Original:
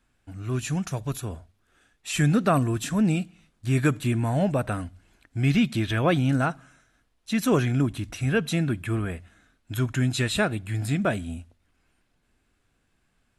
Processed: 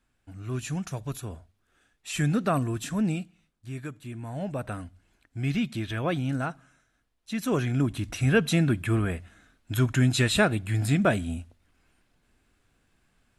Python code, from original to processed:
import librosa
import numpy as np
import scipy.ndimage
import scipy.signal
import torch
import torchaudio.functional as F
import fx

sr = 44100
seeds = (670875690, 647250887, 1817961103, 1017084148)

y = fx.gain(x, sr, db=fx.line((3.05, -4.0), (3.94, -16.5), (4.67, -6.0), (7.41, -6.0), (8.16, 2.0)))